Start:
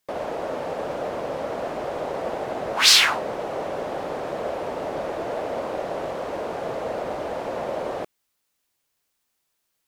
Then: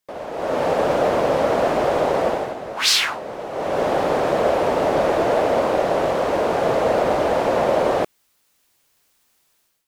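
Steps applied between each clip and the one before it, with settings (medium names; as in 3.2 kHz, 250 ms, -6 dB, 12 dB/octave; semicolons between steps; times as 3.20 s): level rider gain up to 15.5 dB; trim -4 dB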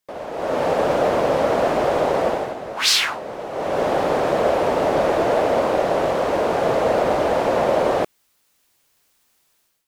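no audible change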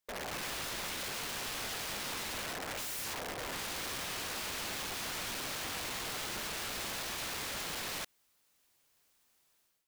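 peak limiter -16 dBFS, peak gain reduction 11 dB; integer overflow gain 26.5 dB; trim -8 dB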